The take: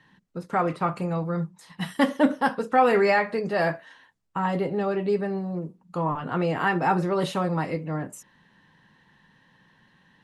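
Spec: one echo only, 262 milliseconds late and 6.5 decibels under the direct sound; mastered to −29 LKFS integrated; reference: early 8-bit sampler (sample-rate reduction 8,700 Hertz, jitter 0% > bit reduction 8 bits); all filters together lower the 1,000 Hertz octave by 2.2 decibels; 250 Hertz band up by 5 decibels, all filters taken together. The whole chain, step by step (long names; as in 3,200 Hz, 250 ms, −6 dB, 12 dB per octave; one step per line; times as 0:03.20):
parametric band 250 Hz +7 dB
parametric band 1,000 Hz −3.5 dB
single-tap delay 262 ms −6.5 dB
sample-rate reduction 8,700 Hz, jitter 0%
bit reduction 8 bits
level −6 dB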